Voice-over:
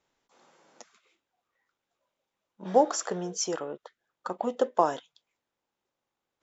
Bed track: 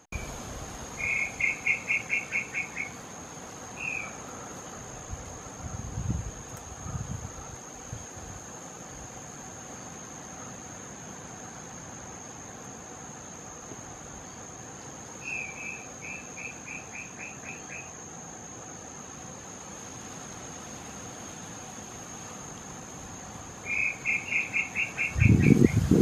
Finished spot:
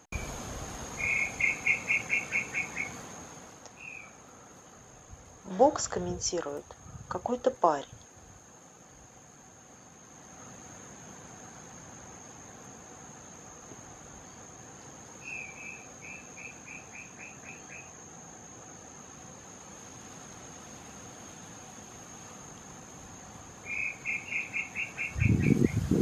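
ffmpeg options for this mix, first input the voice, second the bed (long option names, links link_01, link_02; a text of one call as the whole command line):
ffmpeg -i stem1.wav -i stem2.wav -filter_complex "[0:a]adelay=2850,volume=-1dB[link_01];[1:a]volume=5dB,afade=type=out:start_time=2.96:duration=0.7:silence=0.298538,afade=type=in:start_time=9.96:duration=0.66:silence=0.530884[link_02];[link_01][link_02]amix=inputs=2:normalize=0" out.wav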